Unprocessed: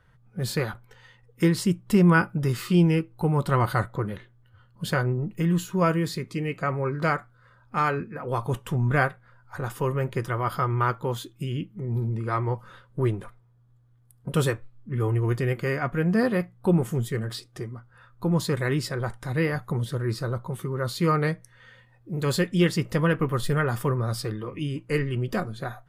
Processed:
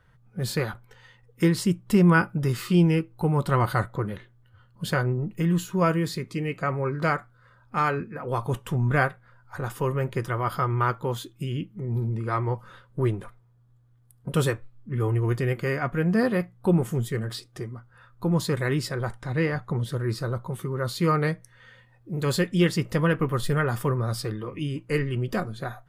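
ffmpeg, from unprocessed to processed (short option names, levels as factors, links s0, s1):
-filter_complex "[0:a]asettb=1/sr,asplit=3[s0][s1][s2];[s0]atrim=end=19.214[s3];[s1]atrim=start=19.21:end=19.85,asetpts=PTS-STARTPTS,afade=t=in:d=0.004:c=qsin,afade=t=out:st=0.636:d=0.004:c=qsin,adynamicsmooth=sensitivity=2.5:basefreq=7100[s4];[s2]atrim=start=19.846[s5];[s3][s4]acrossfade=d=0.004:c1=hsin:c2=qsin[s6];[s6][s5]acrossfade=d=0.004:c1=qsin:c2=hsin"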